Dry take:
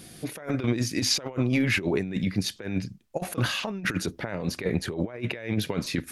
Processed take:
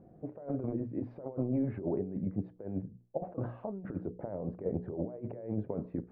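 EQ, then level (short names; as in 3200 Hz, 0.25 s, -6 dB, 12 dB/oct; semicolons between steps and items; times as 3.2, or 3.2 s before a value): ladder low-pass 820 Hz, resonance 35%; notches 60/120/180/240/300/360/420/480 Hz; 0.0 dB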